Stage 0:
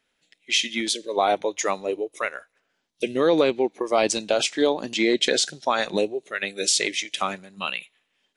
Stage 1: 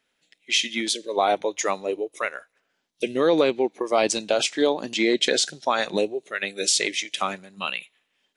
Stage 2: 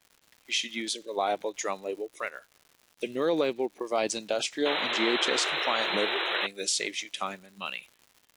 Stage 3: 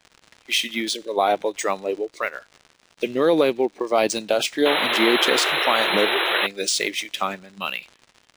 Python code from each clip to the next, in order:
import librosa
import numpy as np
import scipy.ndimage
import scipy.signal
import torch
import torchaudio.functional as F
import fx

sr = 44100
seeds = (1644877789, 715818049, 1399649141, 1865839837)

y1 = fx.low_shelf(x, sr, hz=71.0, db=-7.0)
y2 = fx.spec_paint(y1, sr, seeds[0], shape='noise', start_s=4.65, length_s=1.82, low_hz=310.0, high_hz=4100.0, level_db=-23.0)
y2 = fx.dmg_crackle(y2, sr, seeds[1], per_s=220.0, level_db=-37.0)
y2 = F.gain(torch.from_numpy(y2), -7.0).numpy()
y3 = np.interp(np.arange(len(y2)), np.arange(len(y2))[::3], y2[::3])
y3 = F.gain(torch.from_numpy(y3), 8.5).numpy()